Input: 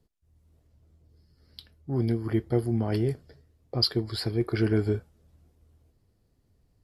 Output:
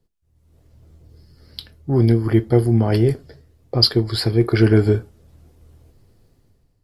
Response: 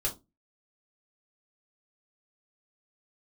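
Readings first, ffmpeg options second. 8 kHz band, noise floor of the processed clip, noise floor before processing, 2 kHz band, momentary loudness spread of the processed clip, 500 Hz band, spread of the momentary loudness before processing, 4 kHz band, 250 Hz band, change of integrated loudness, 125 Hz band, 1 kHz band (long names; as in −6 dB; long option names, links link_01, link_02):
+9.5 dB, −64 dBFS, −69 dBFS, +10.0 dB, 8 LU, +10.0 dB, 8 LU, +9.5 dB, +9.5 dB, +10.5 dB, +11.5 dB, +10.0 dB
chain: -filter_complex "[0:a]dynaudnorm=framelen=160:gausssize=7:maxgain=13.5dB,asplit=2[link_01][link_02];[1:a]atrim=start_sample=2205[link_03];[link_02][link_03]afir=irnorm=-1:irlink=0,volume=-18.5dB[link_04];[link_01][link_04]amix=inputs=2:normalize=0,volume=-1dB"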